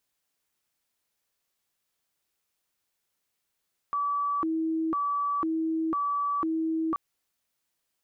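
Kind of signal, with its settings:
siren hi-lo 322–1,150 Hz 1 per second sine −25 dBFS 3.03 s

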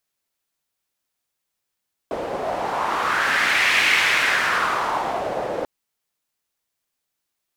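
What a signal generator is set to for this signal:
wind from filtered noise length 3.54 s, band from 570 Hz, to 2,200 Hz, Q 2.6, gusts 1, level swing 9 dB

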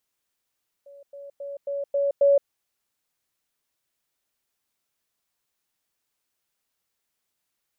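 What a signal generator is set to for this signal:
level staircase 563 Hz −44 dBFS, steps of 6 dB, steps 6, 0.17 s 0.10 s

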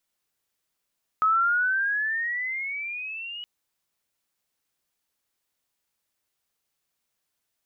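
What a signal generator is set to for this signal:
pitch glide with a swell sine, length 2.22 s, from 1,270 Hz, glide +14.5 semitones, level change −16.5 dB, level −17.5 dB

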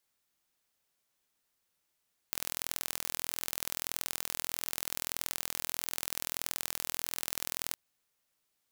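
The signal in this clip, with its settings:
impulse train 41.6 per second, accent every 2, −5.5 dBFS 5.41 s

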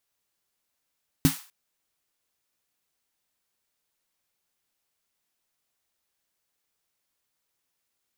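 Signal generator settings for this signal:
synth snare length 0.25 s, tones 160 Hz, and 270 Hz, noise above 800 Hz, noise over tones −10 dB, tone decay 0.13 s, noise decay 0.40 s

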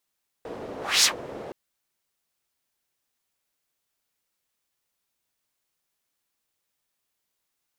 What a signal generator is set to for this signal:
pass-by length 1.07 s, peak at 0:00.59, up 0.26 s, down 0.11 s, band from 470 Hz, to 5,600 Hz, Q 1.7, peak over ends 20 dB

